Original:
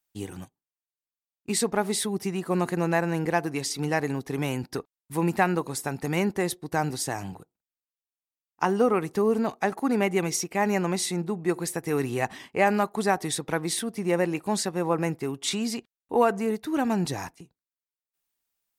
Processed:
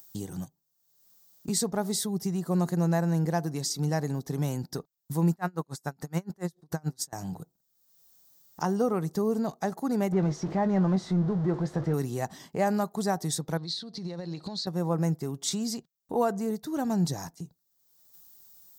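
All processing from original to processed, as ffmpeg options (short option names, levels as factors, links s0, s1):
-filter_complex "[0:a]asettb=1/sr,asplit=3[s0][s1][s2];[s0]atrim=end=5.314[s3];[s1]atrim=start=5.31:end=7.13,asetpts=PTS-STARTPTS,afade=t=in:d=0.004:c=qsin,afade=t=out:st=1.816:d=0.004:c=qsin,equalizer=f=1400:t=o:w=1.2:g=5.5,aeval=exprs='val(0)*pow(10,-35*(0.5-0.5*cos(2*PI*7*n/s))/20)':c=same[s4];[s2]atrim=start=7.126[s5];[s3][s4]acrossfade=d=0.004:c1=hsin:c2=qsin[s6];[s6][s5]acrossfade=d=0.004:c1=qsin:c2=hsin,asettb=1/sr,asplit=3[s7][s8][s9];[s7]atrim=end=10.124[s10];[s8]atrim=start=10.12:end=11.94,asetpts=PTS-STARTPTS,afade=t=in:d=0.004:c=qsin,afade=t=out:st=1.816:d=0.004:c=qsin,aeval=exprs='val(0)+0.5*0.0398*sgn(val(0))':c=same,lowpass=1900,asplit=2[s11][s12];[s12]adelay=21,volume=0.266[s13];[s11][s13]amix=inputs=2:normalize=0,atrim=end_sample=80262[s14];[s9]atrim=start=11.936[s15];[s10][s14]acrossfade=d=0.004:c1=hsin:c2=qsin[s16];[s16][s15]acrossfade=d=0.004:c1=qsin:c2=hsin,asettb=1/sr,asplit=3[s17][s18][s19];[s17]atrim=end=13.574[s20];[s18]atrim=start=13.57:end=14.67,asetpts=PTS-STARTPTS,afade=t=in:d=0.004:c=qsin,afade=t=out:st=1.096:d=0.004:c=qsin,acompressor=threshold=0.0158:ratio=6:attack=3.2:release=140:knee=1:detection=peak,lowpass=f=4200:t=q:w=8.8[s21];[s19]atrim=start=14.666[s22];[s20][s21]acrossfade=d=0.004:c1=hsin:c2=qsin[s23];[s23][s22]acrossfade=d=0.004:c1=qsin:c2=hsin,bass=f=250:g=2,treble=f=4000:g=14,acompressor=mode=upward:threshold=0.0562:ratio=2.5,equalizer=f=160:t=o:w=0.67:g=10,equalizer=f=630:t=o:w=0.67:g=4,equalizer=f=2500:t=o:w=0.67:g=-12,equalizer=f=10000:t=o:w=0.67:g=-12,volume=0.447"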